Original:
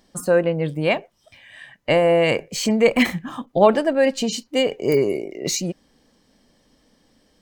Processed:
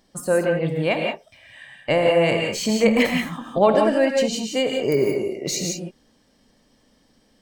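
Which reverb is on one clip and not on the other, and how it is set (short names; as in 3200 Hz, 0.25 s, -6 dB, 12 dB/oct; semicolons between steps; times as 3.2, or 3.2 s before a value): non-linear reverb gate 0.2 s rising, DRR 1.5 dB; gain -2.5 dB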